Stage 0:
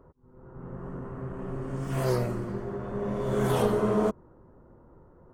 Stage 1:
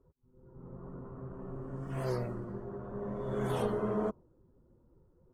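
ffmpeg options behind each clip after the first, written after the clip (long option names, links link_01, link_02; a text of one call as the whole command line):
ffmpeg -i in.wav -af "afftdn=noise_reduction=12:noise_floor=-47,volume=-7.5dB" out.wav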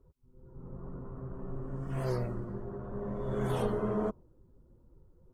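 ffmpeg -i in.wav -af "lowshelf=frequency=76:gain=10" out.wav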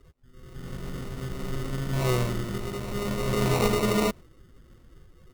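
ffmpeg -i in.wav -af "acrusher=samples=27:mix=1:aa=0.000001,volume=7.5dB" out.wav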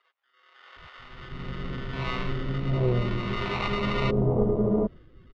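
ffmpeg -i in.wav -filter_complex "[0:a]lowpass=frequency=3700:width=0.5412,lowpass=frequency=3700:width=1.3066,acrossover=split=780[link_01][link_02];[link_01]adelay=760[link_03];[link_03][link_02]amix=inputs=2:normalize=0,volume=1.5dB" out.wav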